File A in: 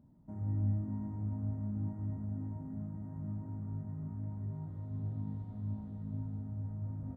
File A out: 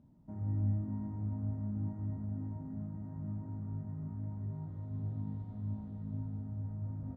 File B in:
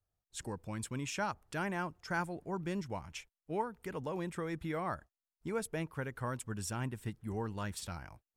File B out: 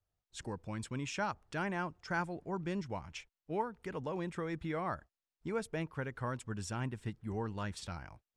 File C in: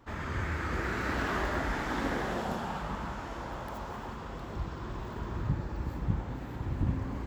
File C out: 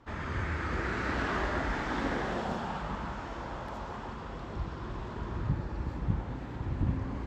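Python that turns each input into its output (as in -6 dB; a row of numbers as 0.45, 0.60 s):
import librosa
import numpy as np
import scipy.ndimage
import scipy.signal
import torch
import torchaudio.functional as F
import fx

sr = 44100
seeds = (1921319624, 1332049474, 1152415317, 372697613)

y = scipy.signal.sosfilt(scipy.signal.butter(2, 6400.0, 'lowpass', fs=sr, output='sos'), x)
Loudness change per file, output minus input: 0.0, 0.0, 0.0 LU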